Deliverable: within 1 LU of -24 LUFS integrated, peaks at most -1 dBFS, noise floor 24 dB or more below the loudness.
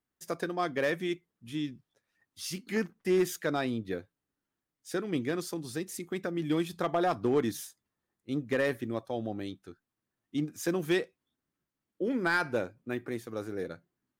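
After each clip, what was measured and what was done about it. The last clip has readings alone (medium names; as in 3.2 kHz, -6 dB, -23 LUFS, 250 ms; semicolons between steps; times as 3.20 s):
clipped samples 0.3%; clipping level -20.0 dBFS; loudness -33.0 LUFS; peak level -20.0 dBFS; loudness target -24.0 LUFS
-> clip repair -20 dBFS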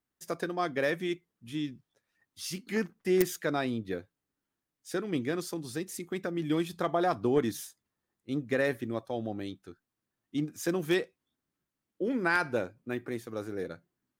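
clipped samples 0.0%; loudness -32.5 LUFS; peak level -11.0 dBFS; loudness target -24.0 LUFS
-> trim +8.5 dB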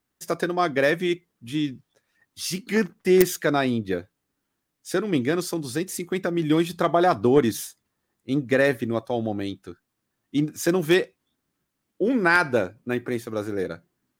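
loudness -24.0 LUFS; peak level -2.5 dBFS; noise floor -79 dBFS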